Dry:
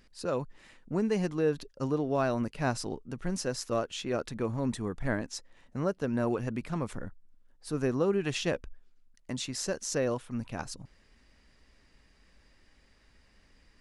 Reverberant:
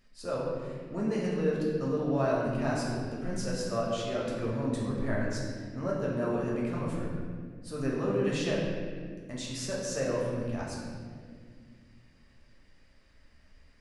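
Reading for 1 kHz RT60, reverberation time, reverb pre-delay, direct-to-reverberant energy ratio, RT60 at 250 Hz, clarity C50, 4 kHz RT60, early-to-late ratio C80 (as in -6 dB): 1.6 s, 2.0 s, 3 ms, -5.5 dB, 3.1 s, -0.5 dB, 1.3 s, 1.5 dB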